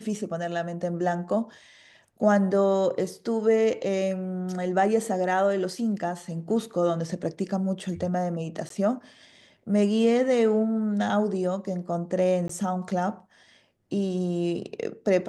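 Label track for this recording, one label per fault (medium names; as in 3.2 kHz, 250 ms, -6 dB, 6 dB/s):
8.690000	8.700000	dropout 13 ms
12.480000	12.490000	dropout 14 ms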